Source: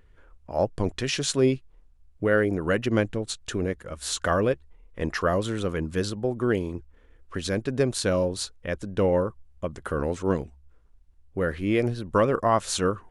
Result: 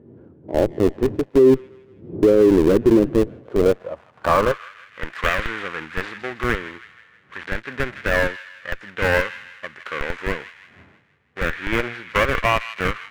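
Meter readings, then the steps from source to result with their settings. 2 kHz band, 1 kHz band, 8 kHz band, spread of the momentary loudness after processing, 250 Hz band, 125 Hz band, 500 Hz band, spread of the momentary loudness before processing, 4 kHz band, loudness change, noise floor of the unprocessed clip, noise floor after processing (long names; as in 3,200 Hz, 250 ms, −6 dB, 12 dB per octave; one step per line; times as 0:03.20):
+9.0 dB, +5.0 dB, −8.5 dB, 18 LU, +6.0 dB, 0.0 dB, +6.0 dB, 10 LU, +0.5 dB, +6.0 dB, −57 dBFS, −54 dBFS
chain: gap after every zero crossing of 0.24 ms
wind on the microphone 110 Hz −40 dBFS
on a send: delay with a high-pass on its return 161 ms, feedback 50%, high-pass 1,700 Hz, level −11 dB
on the sum: band-pass filter sweep 370 Hz → 1,800 Hz, 0:03.18–0:05.01
high-pass filter 63 Hz 24 dB per octave
harmonic and percussive parts rebalanced harmonic +8 dB
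in parallel at −4.5 dB: comparator with hysteresis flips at −26 dBFS
on the sum: high-shelf EQ 4,400 Hz −5 dB
boost into a limiter +15.5 dB
level −5 dB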